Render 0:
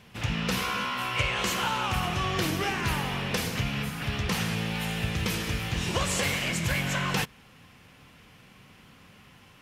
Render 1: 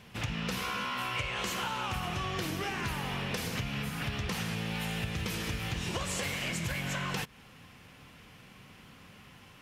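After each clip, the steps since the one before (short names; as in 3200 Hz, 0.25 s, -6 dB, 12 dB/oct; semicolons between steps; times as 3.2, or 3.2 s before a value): compressor, threshold -31 dBFS, peak gain reduction 9.5 dB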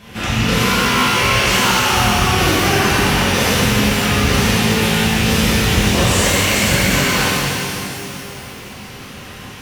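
shimmer reverb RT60 2.6 s, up +12 st, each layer -8 dB, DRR -10.5 dB; gain +8.5 dB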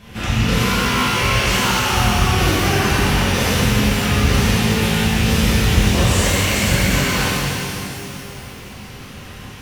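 low shelf 110 Hz +9 dB; gain -3.5 dB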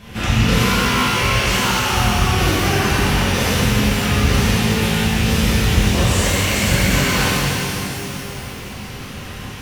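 vocal rider within 4 dB 2 s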